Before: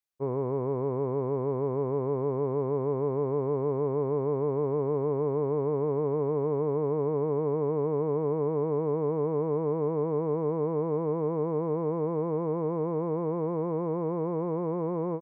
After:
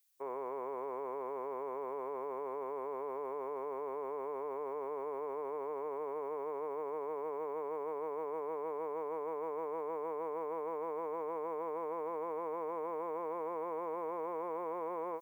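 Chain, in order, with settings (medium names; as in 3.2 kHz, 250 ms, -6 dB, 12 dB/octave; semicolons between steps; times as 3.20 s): high-pass 490 Hz 12 dB/octave; tilt EQ +4 dB/octave; peak limiter -33 dBFS, peak gain reduction 6.5 dB; trim +2 dB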